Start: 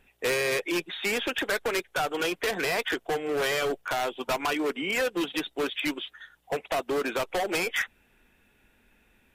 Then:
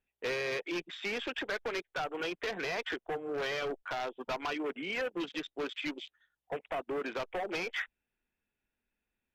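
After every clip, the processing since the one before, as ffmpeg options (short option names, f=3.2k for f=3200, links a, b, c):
-af "afwtdn=0.0112,volume=-7.5dB"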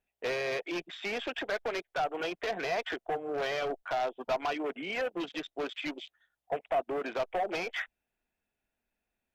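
-af "equalizer=f=680:w=3:g=9"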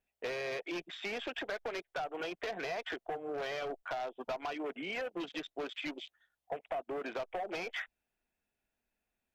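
-af "acompressor=threshold=-34dB:ratio=4,volume=-1.5dB"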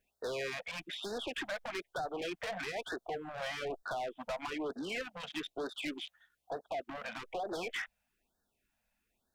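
-af "asoftclip=type=tanh:threshold=-39dB,afftfilt=real='re*(1-between(b*sr/1024,310*pow(2600/310,0.5+0.5*sin(2*PI*1.1*pts/sr))/1.41,310*pow(2600/310,0.5+0.5*sin(2*PI*1.1*pts/sr))*1.41))':imag='im*(1-between(b*sr/1024,310*pow(2600/310,0.5+0.5*sin(2*PI*1.1*pts/sr))/1.41,310*pow(2600/310,0.5+0.5*sin(2*PI*1.1*pts/sr))*1.41))':win_size=1024:overlap=0.75,volume=5.5dB"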